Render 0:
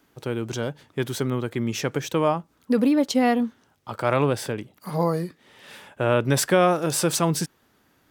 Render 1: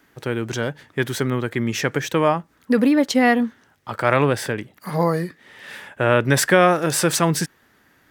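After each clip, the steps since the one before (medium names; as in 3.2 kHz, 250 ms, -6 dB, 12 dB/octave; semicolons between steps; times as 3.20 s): peaking EQ 1.8 kHz +8.5 dB 0.61 oct; trim +3 dB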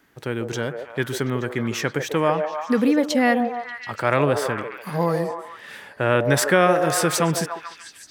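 repeats whose band climbs or falls 146 ms, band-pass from 540 Hz, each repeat 0.7 oct, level -3 dB; trim -2.5 dB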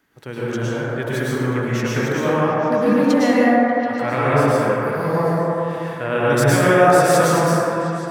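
plate-style reverb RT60 3 s, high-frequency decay 0.25×, pre-delay 95 ms, DRR -8.5 dB; trim -5.5 dB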